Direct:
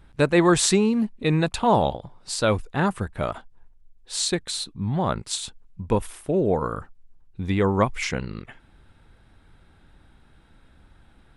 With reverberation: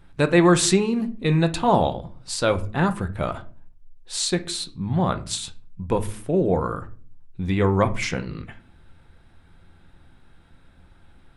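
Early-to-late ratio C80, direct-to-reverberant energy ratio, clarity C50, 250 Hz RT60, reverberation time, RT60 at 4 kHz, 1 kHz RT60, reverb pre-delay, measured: 22.5 dB, 7.5 dB, 16.5 dB, 0.65 s, 0.45 s, 0.30 s, 0.35 s, 6 ms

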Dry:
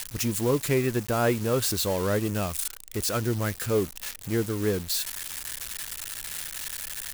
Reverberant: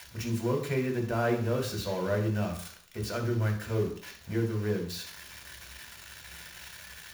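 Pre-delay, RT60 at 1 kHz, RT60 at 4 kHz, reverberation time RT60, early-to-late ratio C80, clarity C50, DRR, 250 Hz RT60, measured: 3 ms, 0.55 s, 0.60 s, 0.55 s, 12.5 dB, 8.0 dB, 2.0 dB, 0.50 s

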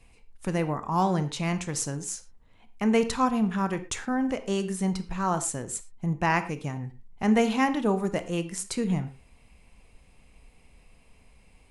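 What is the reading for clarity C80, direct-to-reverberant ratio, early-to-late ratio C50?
17.0 dB, 10.0 dB, 13.0 dB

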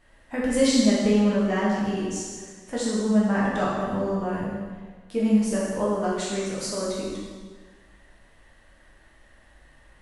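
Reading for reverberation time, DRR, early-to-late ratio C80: 1.5 s, -7.0 dB, 1.5 dB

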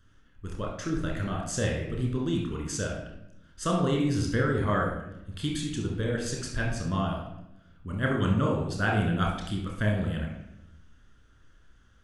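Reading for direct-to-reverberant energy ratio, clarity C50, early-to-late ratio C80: -1.5 dB, 3.0 dB, 7.0 dB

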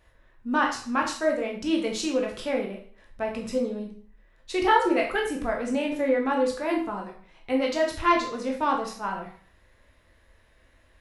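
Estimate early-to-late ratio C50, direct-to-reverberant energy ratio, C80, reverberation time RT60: 7.0 dB, -0.5 dB, 11.0 dB, 0.50 s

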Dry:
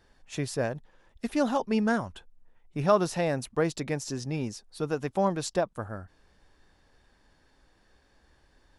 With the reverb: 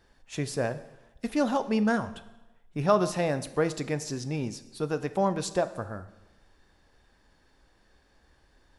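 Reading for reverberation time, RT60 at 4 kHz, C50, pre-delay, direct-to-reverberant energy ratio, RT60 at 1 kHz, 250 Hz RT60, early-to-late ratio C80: 1.0 s, 0.95 s, 15.0 dB, 5 ms, 11.5 dB, 1.0 s, 0.90 s, 16.5 dB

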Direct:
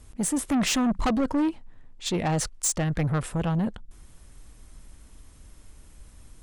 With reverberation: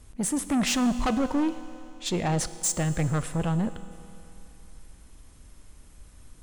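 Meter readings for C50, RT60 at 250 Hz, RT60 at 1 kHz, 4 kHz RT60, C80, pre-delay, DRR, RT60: 13.0 dB, 2.9 s, 2.9 s, 2.9 s, 13.5 dB, 4 ms, 12.0 dB, 2.9 s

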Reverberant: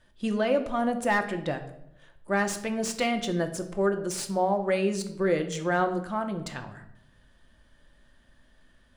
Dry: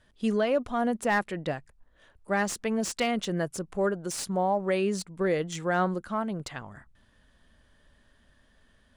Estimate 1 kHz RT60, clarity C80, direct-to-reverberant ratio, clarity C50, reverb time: 0.70 s, 14.5 dB, 5.5 dB, 11.5 dB, 0.75 s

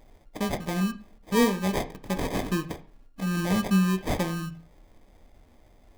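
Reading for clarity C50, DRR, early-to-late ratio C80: 15.5 dB, 8.0 dB, 20.5 dB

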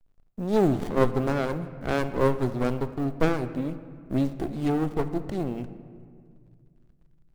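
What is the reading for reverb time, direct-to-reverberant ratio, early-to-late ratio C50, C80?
2.1 s, 11.0 dB, 12.5 dB, 13.5 dB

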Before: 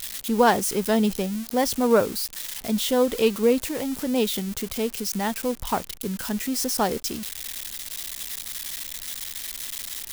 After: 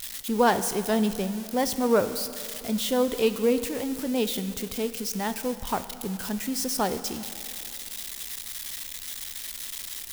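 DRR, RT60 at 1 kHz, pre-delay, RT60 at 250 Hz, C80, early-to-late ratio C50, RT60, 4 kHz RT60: 11.0 dB, 2.7 s, 5 ms, 2.7 s, 13.0 dB, 12.0 dB, 2.7 s, 2.5 s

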